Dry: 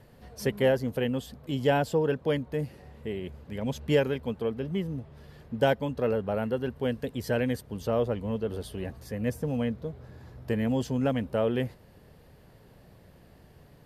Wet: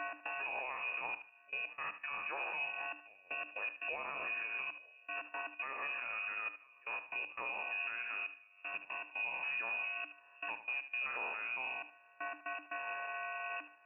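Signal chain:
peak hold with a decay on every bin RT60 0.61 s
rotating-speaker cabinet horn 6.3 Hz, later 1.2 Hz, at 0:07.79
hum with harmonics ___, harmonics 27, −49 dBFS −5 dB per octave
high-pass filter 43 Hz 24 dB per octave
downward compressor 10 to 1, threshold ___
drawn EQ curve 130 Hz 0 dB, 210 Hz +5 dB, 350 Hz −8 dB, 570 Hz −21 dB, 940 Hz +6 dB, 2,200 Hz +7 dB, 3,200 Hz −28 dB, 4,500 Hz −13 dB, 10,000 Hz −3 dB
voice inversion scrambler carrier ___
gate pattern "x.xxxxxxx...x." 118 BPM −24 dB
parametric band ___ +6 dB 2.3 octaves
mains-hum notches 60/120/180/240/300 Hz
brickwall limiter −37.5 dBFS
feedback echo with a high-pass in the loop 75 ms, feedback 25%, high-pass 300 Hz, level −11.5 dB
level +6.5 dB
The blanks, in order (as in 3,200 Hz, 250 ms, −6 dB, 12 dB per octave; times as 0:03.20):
400 Hz, −41 dBFS, 2,700 Hz, 480 Hz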